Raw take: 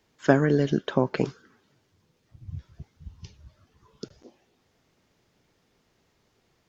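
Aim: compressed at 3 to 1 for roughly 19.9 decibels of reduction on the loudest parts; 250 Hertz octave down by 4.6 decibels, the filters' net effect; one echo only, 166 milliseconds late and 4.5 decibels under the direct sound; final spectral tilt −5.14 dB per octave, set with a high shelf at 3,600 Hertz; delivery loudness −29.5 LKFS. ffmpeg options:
ffmpeg -i in.wav -af "equalizer=frequency=250:width_type=o:gain=-6,highshelf=frequency=3600:gain=3.5,acompressor=threshold=-43dB:ratio=3,aecho=1:1:166:0.596,volume=15.5dB" out.wav

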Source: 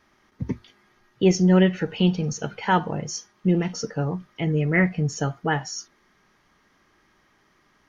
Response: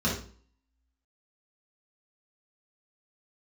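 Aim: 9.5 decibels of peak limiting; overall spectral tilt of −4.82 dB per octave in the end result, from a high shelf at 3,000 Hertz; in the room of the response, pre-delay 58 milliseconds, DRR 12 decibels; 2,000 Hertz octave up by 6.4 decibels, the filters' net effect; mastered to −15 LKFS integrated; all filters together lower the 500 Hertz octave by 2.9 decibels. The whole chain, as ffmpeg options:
-filter_complex "[0:a]equalizer=frequency=500:width_type=o:gain=-4.5,equalizer=frequency=2000:width_type=o:gain=6,highshelf=frequency=3000:gain=4.5,alimiter=limit=-14.5dB:level=0:latency=1,asplit=2[link_01][link_02];[1:a]atrim=start_sample=2205,adelay=58[link_03];[link_02][link_03]afir=irnorm=-1:irlink=0,volume=-22.5dB[link_04];[link_01][link_04]amix=inputs=2:normalize=0,volume=10.5dB"

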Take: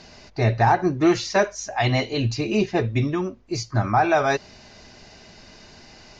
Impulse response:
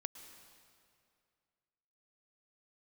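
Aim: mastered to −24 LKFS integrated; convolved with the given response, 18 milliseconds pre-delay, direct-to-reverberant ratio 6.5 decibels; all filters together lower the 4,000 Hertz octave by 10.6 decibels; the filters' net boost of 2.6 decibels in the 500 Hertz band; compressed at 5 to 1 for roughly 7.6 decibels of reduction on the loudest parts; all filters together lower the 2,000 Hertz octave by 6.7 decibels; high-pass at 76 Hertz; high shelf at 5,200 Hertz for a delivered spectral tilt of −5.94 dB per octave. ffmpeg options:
-filter_complex "[0:a]highpass=76,equalizer=frequency=500:width_type=o:gain=4.5,equalizer=frequency=2000:width_type=o:gain=-6.5,equalizer=frequency=4000:width_type=o:gain=-8.5,highshelf=frequency=5200:gain=-7.5,acompressor=threshold=-21dB:ratio=5,asplit=2[link_01][link_02];[1:a]atrim=start_sample=2205,adelay=18[link_03];[link_02][link_03]afir=irnorm=-1:irlink=0,volume=-3.5dB[link_04];[link_01][link_04]amix=inputs=2:normalize=0,volume=1.5dB"

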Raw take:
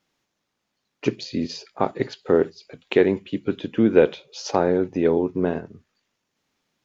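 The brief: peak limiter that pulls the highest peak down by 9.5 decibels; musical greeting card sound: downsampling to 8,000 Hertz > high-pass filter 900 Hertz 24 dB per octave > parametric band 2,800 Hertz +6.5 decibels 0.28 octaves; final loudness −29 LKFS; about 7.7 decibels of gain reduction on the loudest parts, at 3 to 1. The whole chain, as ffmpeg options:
ffmpeg -i in.wav -af "acompressor=threshold=-20dB:ratio=3,alimiter=limit=-16.5dB:level=0:latency=1,aresample=8000,aresample=44100,highpass=frequency=900:width=0.5412,highpass=frequency=900:width=1.3066,equalizer=frequency=2800:width_type=o:width=0.28:gain=6.5,volume=12dB" out.wav

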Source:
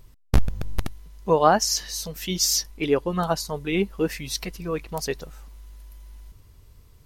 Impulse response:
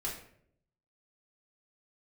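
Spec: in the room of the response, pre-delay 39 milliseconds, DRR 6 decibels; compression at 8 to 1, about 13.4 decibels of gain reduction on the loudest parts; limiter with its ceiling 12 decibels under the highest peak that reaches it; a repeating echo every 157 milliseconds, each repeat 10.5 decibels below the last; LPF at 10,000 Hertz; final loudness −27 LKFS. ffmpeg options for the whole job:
-filter_complex "[0:a]lowpass=10000,acompressor=threshold=-24dB:ratio=8,alimiter=limit=-23.5dB:level=0:latency=1,aecho=1:1:157|314|471:0.299|0.0896|0.0269,asplit=2[link_01][link_02];[1:a]atrim=start_sample=2205,adelay=39[link_03];[link_02][link_03]afir=irnorm=-1:irlink=0,volume=-8dB[link_04];[link_01][link_04]amix=inputs=2:normalize=0,volume=6dB"

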